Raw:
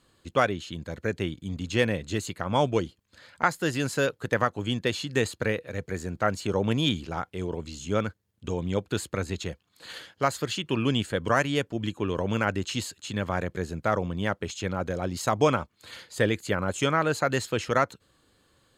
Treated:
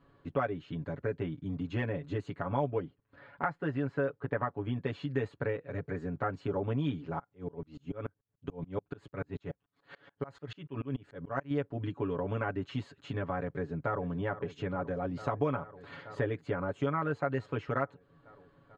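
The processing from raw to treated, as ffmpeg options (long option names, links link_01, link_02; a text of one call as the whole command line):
ffmpeg -i in.wav -filter_complex "[0:a]asettb=1/sr,asplit=3[link_01][link_02][link_03];[link_01]atrim=end=2.694[link_04];[link_02]atrim=start=2.69:end=4.77,asetpts=PTS-STARTPTS,afade=type=in:duration=0.004:curve=qsin,afade=type=out:start_time=2.076:duration=0.004:curve=qsin,bass=frequency=250:gain=-1,treble=frequency=4000:gain=-11[link_05];[link_03]atrim=start=4.766[link_06];[link_04][link_05]acrossfade=duration=0.004:curve1=hsin:curve2=qsin[link_07];[link_07][link_06]acrossfade=duration=0.004:curve1=qsin:curve2=hsin,asettb=1/sr,asplit=3[link_08][link_09][link_10];[link_08]atrim=end=7.194[link_11];[link_09]atrim=start=7.19:end=11.51,asetpts=PTS-STARTPTS,afade=type=in:duration=0.004:curve=qsin,afade=type=out:start_time=4.316:duration=0.004:curve=qsin,aeval=exprs='val(0)*pow(10,-32*if(lt(mod(-6.9*n/s,1),2*abs(-6.9)/1000),1-mod(-6.9*n/s,1)/(2*abs(-6.9)/1000),(mod(-6.9*n/s,1)-2*abs(-6.9)/1000)/(1-2*abs(-6.9)/1000))/20)':channel_layout=same[link_12];[link_10]atrim=start=11.506[link_13];[link_11][link_12]acrossfade=duration=0.004:curve1=hsin:curve2=qsin[link_14];[link_14][link_13]acrossfade=duration=0.004:curve1=qsin:curve2=hsin,asplit=2[link_15][link_16];[link_16]afade=type=in:start_time=13.45:duration=0.01,afade=type=out:start_time=14.03:duration=0.01,aecho=0:1:440|880|1320|1760|2200|2640|3080|3520|3960|4400|4840|5280:0.16788|0.134304|0.107443|0.0859548|0.0687638|0.0550111|0.0440088|0.0352071|0.0281657|0.0225325|0.018026|0.0144208[link_17];[link_15][link_17]amix=inputs=2:normalize=0,lowpass=1500,aecho=1:1:7.1:0.95,acompressor=threshold=-36dB:ratio=2" out.wav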